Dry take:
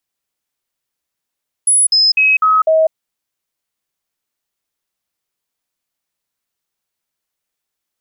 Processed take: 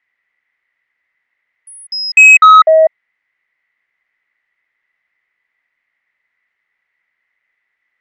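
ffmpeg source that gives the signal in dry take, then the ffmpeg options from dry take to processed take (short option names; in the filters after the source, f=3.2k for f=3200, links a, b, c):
-f lavfi -i "aevalsrc='0.398*clip(min(mod(t,0.25),0.2-mod(t,0.25))/0.005,0,1)*sin(2*PI*10200*pow(2,-floor(t/0.25)/1)*mod(t,0.25))':d=1.25:s=44100"
-filter_complex "[0:a]lowpass=f=2k:t=q:w=15,lowshelf=f=480:g=-8.5,asplit=2[a][b];[b]aeval=exprs='0.668*sin(PI/2*1.58*val(0)/0.668)':c=same,volume=-5.5dB[c];[a][c]amix=inputs=2:normalize=0"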